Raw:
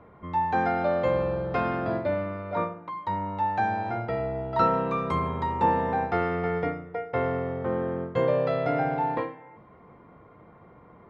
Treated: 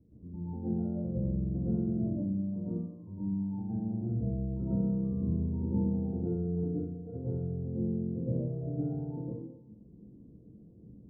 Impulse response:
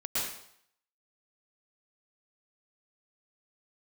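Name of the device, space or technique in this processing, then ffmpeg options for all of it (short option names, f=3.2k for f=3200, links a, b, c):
next room: -filter_complex "[0:a]lowpass=f=300:w=0.5412,lowpass=f=300:w=1.3066[a];[1:a]atrim=start_sample=2205[b];[a][b]afir=irnorm=-1:irlink=0,volume=-3dB"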